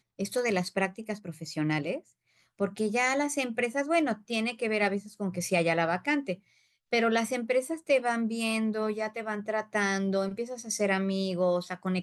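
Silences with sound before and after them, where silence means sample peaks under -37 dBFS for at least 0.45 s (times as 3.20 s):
1.98–2.60 s
6.34–6.93 s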